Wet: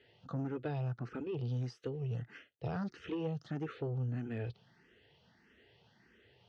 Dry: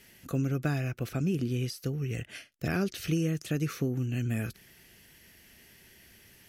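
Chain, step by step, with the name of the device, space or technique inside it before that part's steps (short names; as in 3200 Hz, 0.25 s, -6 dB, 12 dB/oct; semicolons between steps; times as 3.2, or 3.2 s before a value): 1.44–1.97 high shelf 4900 Hz +11.5 dB; barber-pole phaser into a guitar amplifier (endless phaser +1.6 Hz; soft clip -29 dBFS, distortion -15 dB; speaker cabinet 83–3900 Hz, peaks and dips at 120 Hz +5 dB, 460 Hz +8 dB, 820 Hz +7 dB, 1300 Hz +3 dB, 2300 Hz -8 dB); gain -4 dB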